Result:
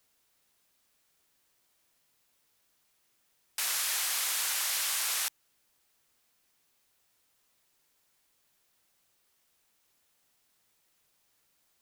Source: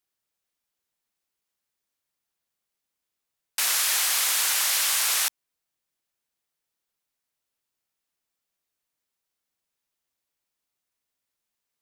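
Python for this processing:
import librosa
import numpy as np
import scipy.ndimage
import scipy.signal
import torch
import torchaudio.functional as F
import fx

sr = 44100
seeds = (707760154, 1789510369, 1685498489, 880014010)

y = fx.dmg_noise_colour(x, sr, seeds[0], colour='white', level_db=-65.0)
y = y * librosa.db_to_amplitude(-7.5)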